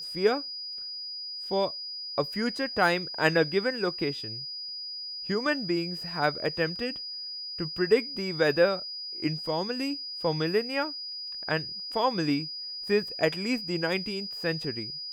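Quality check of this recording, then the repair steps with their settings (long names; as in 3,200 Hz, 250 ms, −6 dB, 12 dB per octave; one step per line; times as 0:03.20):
whistle 4,900 Hz −35 dBFS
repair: notch filter 4,900 Hz, Q 30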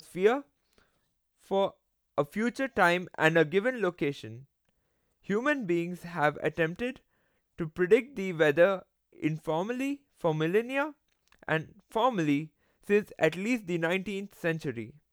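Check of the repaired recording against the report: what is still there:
none of them is left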